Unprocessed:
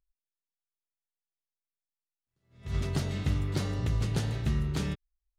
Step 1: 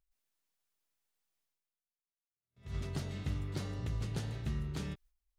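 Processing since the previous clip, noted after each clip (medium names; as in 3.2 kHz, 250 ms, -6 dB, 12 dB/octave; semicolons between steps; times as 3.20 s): gate with hold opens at -49 dBFS; reverse; upward compressor, threshold -49 dBFS; reverse; trim -8 dB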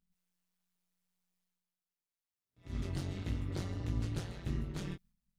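chorus 1.5 Hz, delay 18 ms, depth 3.9 ms; AM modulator 180 Hz, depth 70%; trim +5.5 dB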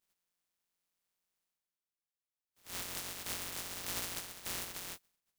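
spectral contrast reduction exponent 0.12; trim -4.5 dB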